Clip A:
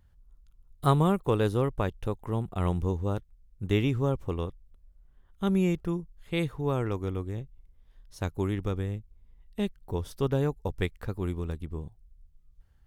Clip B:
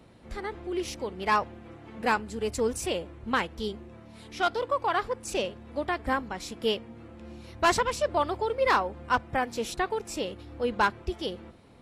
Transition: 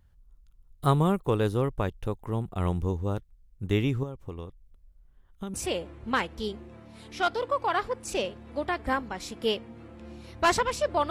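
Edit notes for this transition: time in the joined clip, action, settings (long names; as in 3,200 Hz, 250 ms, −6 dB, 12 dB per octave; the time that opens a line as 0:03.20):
clip A
0:04.03–0:05.54: downward compressor 6 to 1, threshold −34 dBFS
0:05.54: continue with clip B from 0:02.74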